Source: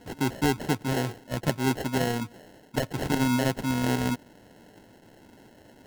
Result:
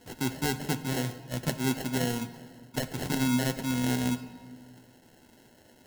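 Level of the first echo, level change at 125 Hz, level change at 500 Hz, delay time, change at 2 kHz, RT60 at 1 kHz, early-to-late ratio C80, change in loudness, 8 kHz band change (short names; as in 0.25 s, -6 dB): none, -2.5 dB, -5.0 dB, none, -3.0 dB, 1.7 s, 14.0 dB, -2.5 dB, +1.0 dB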